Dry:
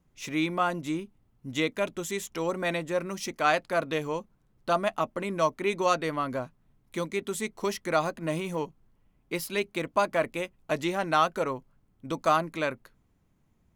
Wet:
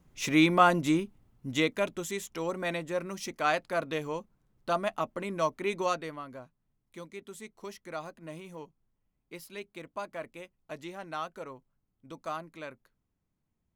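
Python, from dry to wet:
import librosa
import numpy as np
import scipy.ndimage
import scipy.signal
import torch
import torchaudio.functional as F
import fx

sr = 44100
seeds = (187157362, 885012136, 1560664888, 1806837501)

y = fx.gain(x, sr, db=fx.line((0.83, 5.5), (2.26, -3.5), (5.82, -3.5), (6.27, -13.0)))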